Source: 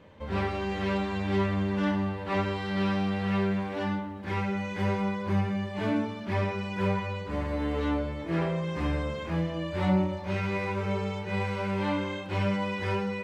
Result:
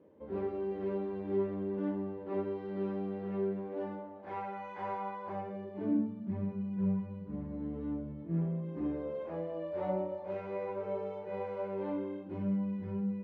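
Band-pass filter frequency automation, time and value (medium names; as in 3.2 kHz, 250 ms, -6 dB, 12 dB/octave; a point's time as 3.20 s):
band-pass filter, Q 2.3
3.61 s 360 Hz
4.58 s 860 Hz
5.21 s 860 Hz
6.14 s 190 Hz
8.45 s 190 Hz
9.27 s 550 Hz
11.60 s 550 Hz
12.71 s 190 Hz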